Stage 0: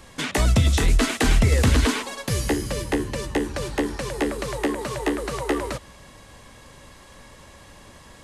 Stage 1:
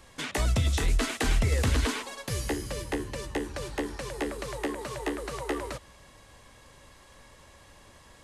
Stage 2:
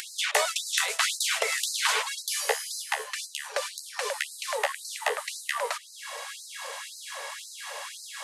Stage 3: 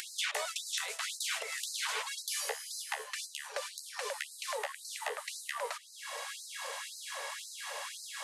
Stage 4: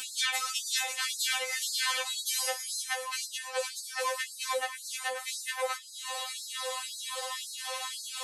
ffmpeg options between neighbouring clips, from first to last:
-af "equalizer=f=200:t=o:w=1.2:g=-4,volume=-6.5dB"
-af "acompressor=mode=upward:threshold=-32dB:ratio=2.5,afftfilt=real='re*gte(b*sr/1024,410*pow(4000/410,0.5+0.5*sin(2*PI*1.9*pts/sr)))':imag='im*gte(b*sr/1024,410*pow(4000/410,0.5+0.5*sin(2*PI*1.9*pts/sr)))':win_size=1024:overlap=0.75,volume=8.5dB"
-af "alimiter=limit=-20dB:level=0:latency=1:release=463,volume=-3dB"
-af "afftfilt=real='re*3.46*eq(mod(b,12),0)':imag='im*3.46*eq(mod(b,12),0)':win_size=2048:overlap=0.75,volume=8dB"

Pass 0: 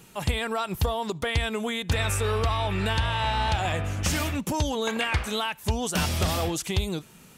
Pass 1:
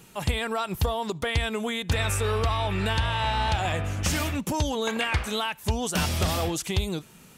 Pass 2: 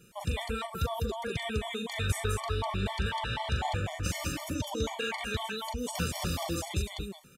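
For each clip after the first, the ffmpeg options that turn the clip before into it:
-af anull
-af "aecho=1:1:40.82|201.2:0.501|0.794,afftfilt=real='re*gt(sin(2*PI*4*pts/sr)*(1-2*mod(floor(b*sr/1024/590),2)),0)':imag='im*gt(sin(2*PI*4*pts/sr)*(1-2*mod(floor(b*sr/1024/590),2)),0)':win_size=1024:overlap=0.75,volume=-6dB"

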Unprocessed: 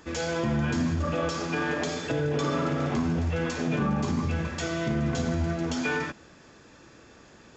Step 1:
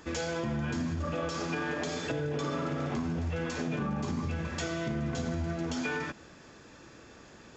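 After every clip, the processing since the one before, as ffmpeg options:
-af "acompressor=threshold=-31dB:ratio=3"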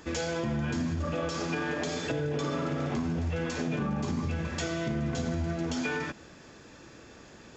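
-af "equalizer=f=1.2k:w=1.5:g=-2,volume=2dB"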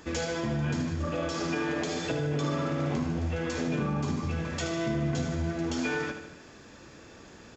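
-af "aecho=1:1:75|150|225|300|375|450:0.376|0.203|0.11|0.0592|0.032|0.0173"

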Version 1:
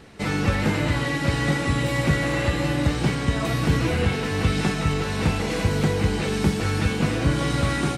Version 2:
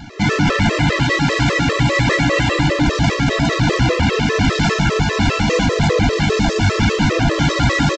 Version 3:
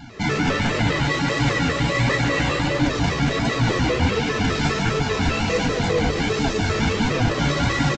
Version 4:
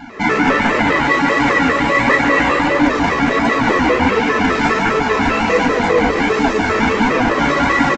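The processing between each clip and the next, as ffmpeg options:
-af "aresample=16000,aeval=exprs='0.376*sin(PI/2*3.55*val(0)/0.376)':c=same,aresample=44100,afftfilt=real='re*gt(sin(2*PI*5*pts/sr)*(1-2*mod(floor(b*sr/1024/340),2)),0)':imag='im*gt(sin(2*PI*5*pts/sr)*(1-2*mod(floor(b*sr/1024/340),2)),0)':win_size=1024:overlap=0.75"
-filter_complex "[0:a]bandreject=f=50:t=h:w=6,bandreject=f=100:t=h:w=6,bandreject=f=150:t=h:w=6,bandreject=f=200:t=h:w=6,asplit=2[a][b];[b]aecho=0:1:34.99|145.8:0.316|0.355[c];[a][c]amix=inputs=2:normalize=0,flanger=delay=6.6:depth=7.7:regen=48:speed=1.4:shape=triangular,volume=-1.5dB"
-af "equalizer=f=125:t=o:w=1:g=-10,equalizer=f=250:t=o:w=1:g=9,equalizer=f=500:t=o:w=1:g=4,equalizer=f=1k:t=o:w=1:g=10,equalizer=f=2k:t=o:w=1:g=8,equalizer=f=4k:t=o:w=1:g=-3"

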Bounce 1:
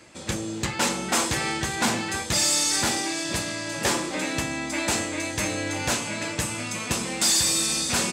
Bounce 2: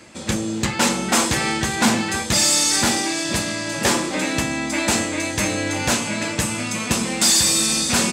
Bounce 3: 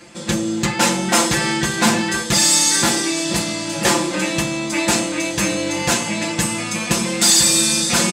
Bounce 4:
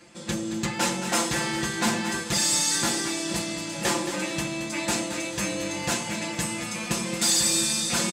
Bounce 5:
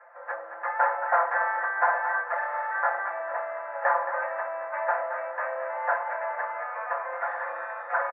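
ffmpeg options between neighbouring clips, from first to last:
-af "equalizer=f=220:w=4.4:g=6,volume=5dB"
-af "aecho=1:1:5.8:0.81"
-af "aecho=1:1:222|444|666|888:0.316|0.108|0.0366|0.0124,volume=-9dB"
-af "asuperpass=centerf=1000:order=12:qfactor=0.82,volume=7dB"

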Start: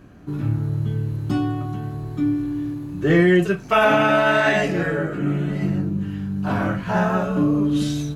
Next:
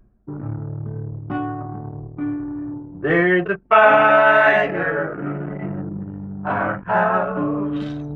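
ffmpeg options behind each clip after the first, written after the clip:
-filter_complex "[0:a]anlmdn=158,acrossover=split=510 2500:gain=0.224 1 0.0708[a][b][c];[a][b][c]amix=inputs=3:normalize=0,areverse,acompressor=mode=upward:threshold=-31dB:ratio=2.5,areverse,volume=6.5dB"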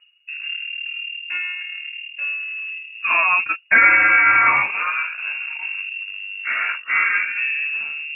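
-af "lowpass=f=2.5k:t=q:w=0.5098,lowpass=f=2.5k:t=q:w=0.6013,lowpass=f=2.5k:t=q:w=0.9,lowpass=f=2.5k:t=q:w=2.563,afreqshift=-2900,volume=-1dB"

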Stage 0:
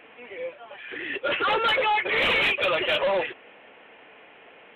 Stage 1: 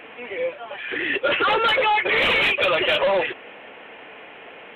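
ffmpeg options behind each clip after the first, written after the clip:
-af "acompressor=threshold=-27dB:ratio=3,volume=8.5dB"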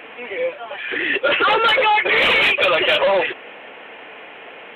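-af "lowshelf=f=210:g=-6,volume=4dB"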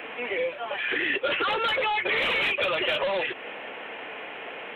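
-filter_complex "[0:a]acrossover=split=230|2800[a][b][c];[a]acompressor=threshold=-45dB:ratio=4[d];[b]acompressor=threshold=-27dB:ratio=4[e];[c]acompressor=threshold=-34dB:ratio=4[f];[d][e][f]amix=inputs=3:normalize=0"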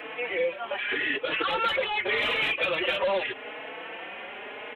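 -filter_complex "[0:a]asplit=2[a][b];[b]adelay=4.2,afreqshift=0.83[c];[a][c]amix=inputs=2:normalize=1,volume=2dB"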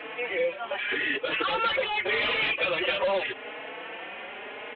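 -af "aresample=11025,aresample=44100"

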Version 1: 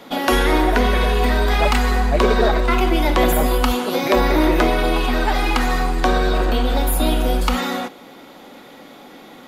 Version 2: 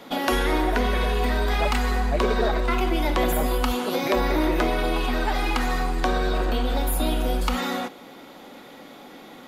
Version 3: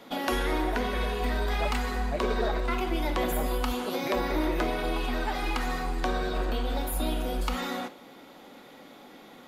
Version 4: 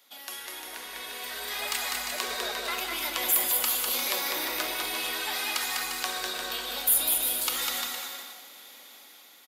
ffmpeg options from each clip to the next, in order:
-af "acompressor=threshold=-22dB:ratio=1.5,volume=-2.5dB"
-af "flanger=delay=8.6:depth=5.9:regen=-84:speed=0.99:shape=sinusoidal,volume=-1dB"
-af "aderivative,aecho=1:1:200|350|462.5|546.9|610.2:0.631|0.398|0.251|0.158|0.1,dynaudnorm=f=310:g=9:m=12dB"

